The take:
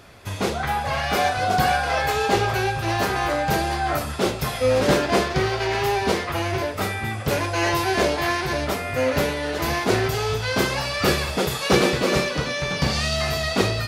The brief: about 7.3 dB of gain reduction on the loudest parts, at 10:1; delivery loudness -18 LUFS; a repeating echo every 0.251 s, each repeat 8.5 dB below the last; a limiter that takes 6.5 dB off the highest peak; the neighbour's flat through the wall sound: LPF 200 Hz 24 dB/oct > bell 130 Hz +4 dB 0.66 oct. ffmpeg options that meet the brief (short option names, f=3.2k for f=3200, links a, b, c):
-af "acompressor=threshold=-21dB:ratio=10,alimiter=limit=-17dB:level=0:latency=1,lowpass=f=200:w=0.5412,lowpass=f=200:w=1.3066,equalizer=f=130:t=o:w=0.66:g=4,aecho=1:1:251|502|753|1004:0.376|0.143|0.0543|0.0206,volume=15dB"